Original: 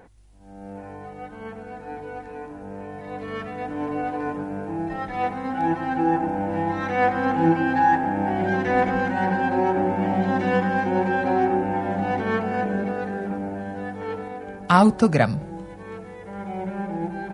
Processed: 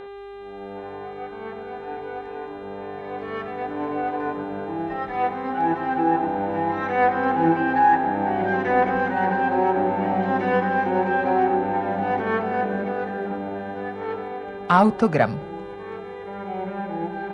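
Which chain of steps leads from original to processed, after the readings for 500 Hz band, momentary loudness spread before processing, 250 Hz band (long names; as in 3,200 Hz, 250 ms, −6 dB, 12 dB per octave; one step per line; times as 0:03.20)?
+1.5 dB, 18 LU, −2.0 dB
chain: mid-hump overdrive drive 10 dB, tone 1,200 Hz, clips at −1.5 dBFS
hum with harmonics 400 Hz, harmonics 10, −38 dBFS −9 dB per octave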